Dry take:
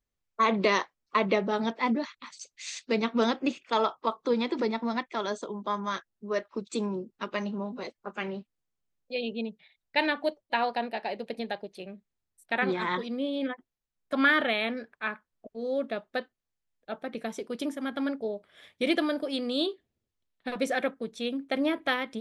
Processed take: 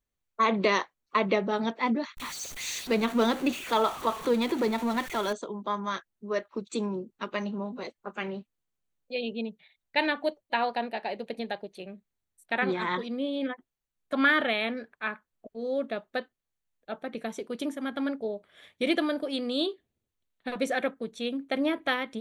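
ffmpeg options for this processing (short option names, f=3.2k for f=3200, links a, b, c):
-filter_complex "[0:a]asettb=1/sr,asplit=3[a][b][c];[a]atrim=end=2.174[d];[b]atrim=start=2.17:end=5.33,asetpts=PTS-STARTPTS,afade=t=in:d=0.004:c=qsin,afade=t=out:st=3.156:d=0.004:c=qsin,aeval=exprs='val(0)+0.5*0.02*sgn(val(0))':c=same[e];[c]atrim=start=5.326[f];[d][e]acrossfade=d=0.004:c1=hsin:c2=qsin[g];[g][f]acrossfade=d=0.004:c1=qsin:c2=hsin,bandreject=f=5.1k:w=7.5"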